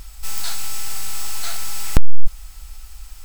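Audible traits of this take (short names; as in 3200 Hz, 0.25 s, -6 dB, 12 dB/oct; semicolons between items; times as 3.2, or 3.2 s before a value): noise floor -39 dBFS; spectral tilt -2.5 dB/oct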